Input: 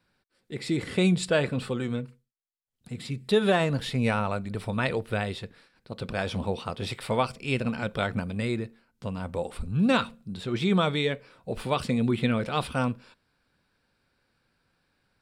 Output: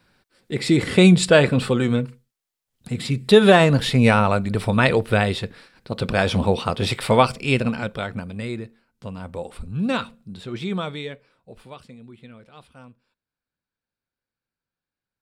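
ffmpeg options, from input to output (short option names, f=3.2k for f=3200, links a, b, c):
-af "volume=10dB,afade=t=out:st=7.3:d=0.72:silence=0.298538,afade=t=out:st=10.3:d=1.2:silence=0.298538,afade=t=out:st=11.5:d=0.49:silence=0.398107"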